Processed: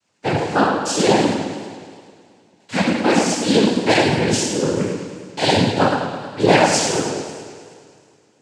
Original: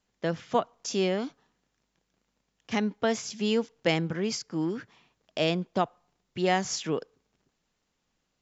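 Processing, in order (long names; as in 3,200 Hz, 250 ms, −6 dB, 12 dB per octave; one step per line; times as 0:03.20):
coupled-rooms reverb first 0.88 s, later 2.6 s, from −18 dB, DRR −8.5 dB
cochlear-implant simulation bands 8
feedback echo with a swinging delay time 106 ms, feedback 67%, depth 101 cents, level −11 dB
level +3.5 dB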